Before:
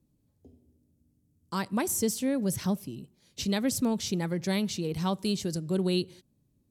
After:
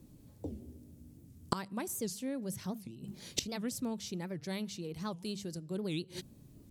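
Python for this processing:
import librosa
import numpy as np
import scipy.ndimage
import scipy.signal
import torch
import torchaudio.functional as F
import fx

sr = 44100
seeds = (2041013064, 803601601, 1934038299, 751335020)

y = fx.hum_notches(x, sr, base_hz=50, count=4)
y = fx.gate_flip(y, sr, shuts_db=-32.0, range_db=-24)
y = fx.record_warp(y, sr, rpm=78.0, depth_cents=250.0)
y = y * librosa.db_to_amplitude(14.5)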